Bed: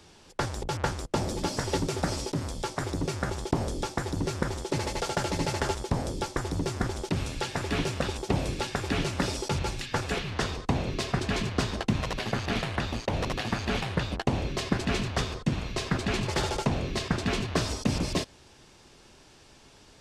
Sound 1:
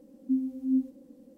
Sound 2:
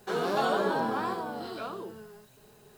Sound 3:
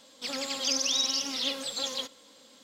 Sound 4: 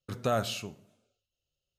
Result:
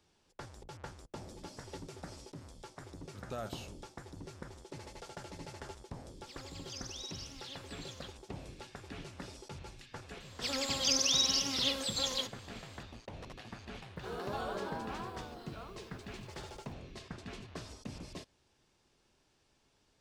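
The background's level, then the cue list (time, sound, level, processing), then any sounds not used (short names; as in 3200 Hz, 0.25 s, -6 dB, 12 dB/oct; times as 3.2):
bed -18 dB
3.06 add 4 -13 dB
6.05 add 3 -18 dB
10.2 add 3 -1.5 dB
13.96 add 2 -12 dB
not used: 1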